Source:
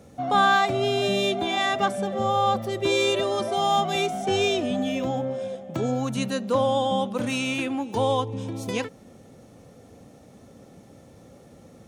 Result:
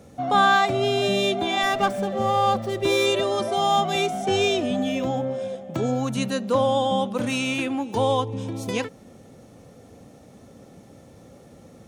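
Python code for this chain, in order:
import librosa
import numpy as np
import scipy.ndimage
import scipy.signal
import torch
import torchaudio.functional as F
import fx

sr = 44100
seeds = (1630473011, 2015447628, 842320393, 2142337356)

y = fx.running_max(x, sr, window=3, at=(1.63, 3.06))
y = F.gain(torch.from_numpy(y), 1.5).numpy()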